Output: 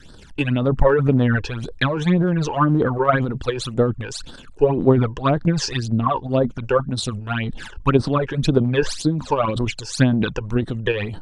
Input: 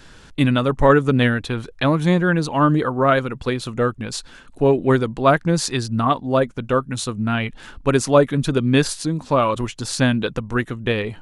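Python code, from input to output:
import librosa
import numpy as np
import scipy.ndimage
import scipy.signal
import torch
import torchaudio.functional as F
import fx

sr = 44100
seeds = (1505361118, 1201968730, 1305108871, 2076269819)

y = fx.phaser_stages(x, sr, stages=12, low_hz=200.0, high_hz=2400.0, hz=1.9, feedback_pct=35)
y = fx.env_lowpass_down(y, sr, base_hz=2000.0, full_db=-13.5)
y = fx.transient(y, sr, attack_db=7, sustain_db=11)
y = F.gain(torch.from_numpy(y), -2.5).numpy()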